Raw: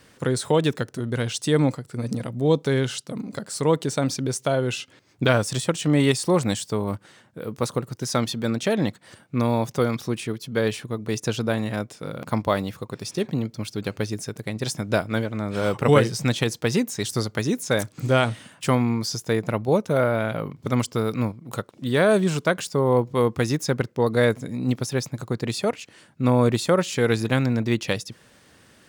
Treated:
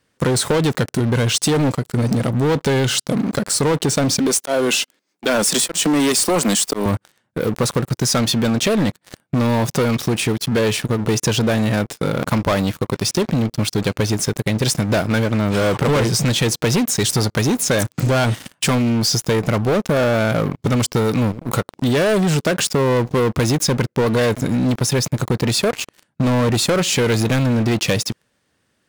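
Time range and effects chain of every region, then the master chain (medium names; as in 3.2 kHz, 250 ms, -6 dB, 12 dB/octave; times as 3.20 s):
4.19–6.86 s: steep high-pass 180 Hz 48 dB/octave + treble shelf 6.2 kHz +8.5 dB + slow attack 178 ms
whole clip: waveshaping leveller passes 5; compression, threshold -12 dBFS; trim -3 dB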